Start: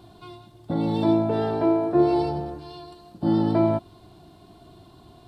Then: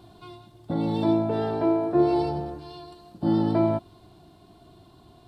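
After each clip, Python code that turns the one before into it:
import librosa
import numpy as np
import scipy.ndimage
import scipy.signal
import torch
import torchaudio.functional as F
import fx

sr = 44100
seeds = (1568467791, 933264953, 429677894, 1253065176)

y = fx.rider(x, sr, range_db=10, speed_s=2.0)
y = y * 10.0 ** (-1.5 / 20.0)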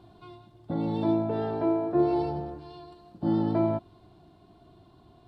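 y = fx.high_shelf(x, sr, hz=4800.0, db=-11.5)
y = y * 10.0 ** (-3.0 / 20.0)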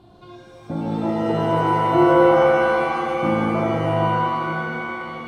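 y = fx.env_lowpass_down(x, sr, base_hz=1200.0, full_db=-20.5)
y = fx.rev_shimmer(y, sr, seeds[0], rt60_s=3.5, semitones=7, shimmer_db=-2, drr_db=-0.5)
y = y * 10.0 ** (3.5 / 20.0)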